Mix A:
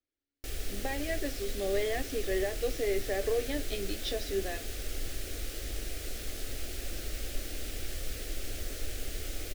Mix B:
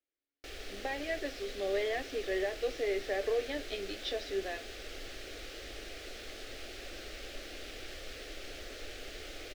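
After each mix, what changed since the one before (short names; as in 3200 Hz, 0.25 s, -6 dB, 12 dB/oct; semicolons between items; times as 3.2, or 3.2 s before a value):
master: add three-band isolator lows -13 dB, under 320 Hz, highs -17 dB, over 5300 Hz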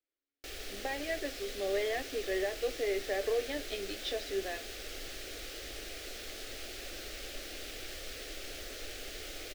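background: add high shelf 6900 Hz +11.5 dB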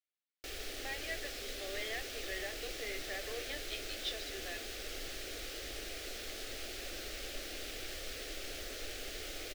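speech: add band-pass 3600 Hz, Q 0.61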